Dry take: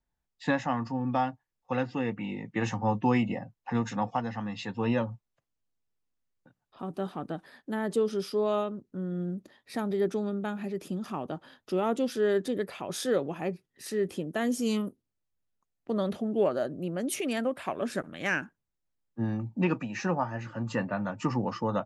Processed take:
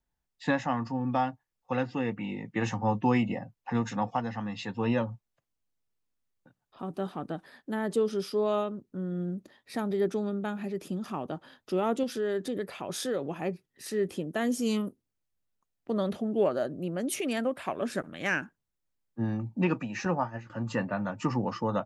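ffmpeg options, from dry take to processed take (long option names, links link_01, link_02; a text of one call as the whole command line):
ffmpeg -i in.wav -filter_complex "[0:a]asettb=1/sr,asplit=3[link_01][link_02][link_03];[link_01]atrim=end=12.034[link_04];[link_02]atrim=start=12.03:end=13.29,asetpts=PTS-STARTPTS,afade=type=in:duration=0.004:curve=qsin,afade=type=out:start_time=1.256:duration=0.004:curve=qsin,acompressor=threshold=-29dB:ratio=2:attack=3.2:release=140:knee=1:detection=peak[link_05];[link_03]atrim=start=13.286[link_06];[link_04][link_05]acrossfade=duration=0.004:curve1=hsin:curve2=qsin[link_07];[link_07][link_06]acrossfade=duration=0.004:curve1=qsin:curve2=hsin,asettb=1/sr,asplit=3[link_08][link_09][link_10];[link_08]atrim=end=20.054[link_11];[link_09]atrim=start=20.05:end=20.5,asetpts=PTS-STARTPTS,afade=type=in:duration=0.004:curve=qsin,afade=type=out:start_time=0.446:duration=0.004:curve=qsin,agate=range=-33dB:threshold=-32dB:ratio=3:release=100:detection=peak[link_12];[link_10]atrim=start=20.496[link_13];[link_11][link_12]acrossfade=duration=0.004:curve1=hsin:curve2=qsin[link_14];[link_14][link_13]acrossfade=duration=0.004:curve1=qsin:curve2=hsin" out.wav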